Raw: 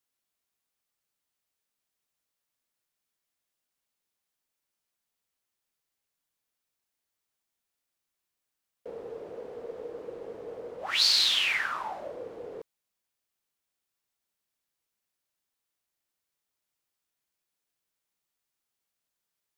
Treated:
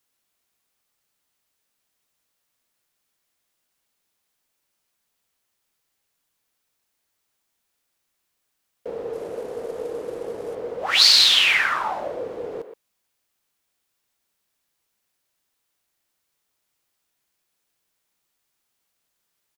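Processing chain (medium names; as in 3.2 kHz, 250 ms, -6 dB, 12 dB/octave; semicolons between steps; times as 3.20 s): 9.13–10.55 s: CVSD coder 64 kbps; speakerphone echo 120 ms, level -9 dB; trim +9 dB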